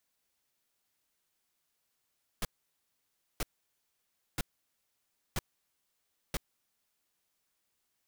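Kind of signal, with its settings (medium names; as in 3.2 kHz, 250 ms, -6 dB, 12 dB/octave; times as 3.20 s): noise bursts pink, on 0.03 s, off 0.95 s, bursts 5, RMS -32 dBFS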